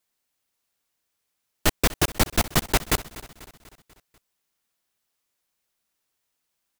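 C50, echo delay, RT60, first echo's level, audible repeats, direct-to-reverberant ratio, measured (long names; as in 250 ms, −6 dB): no reverb audible, 245 ms, no reverb audible, −18.0 dB, 4, no reverb audible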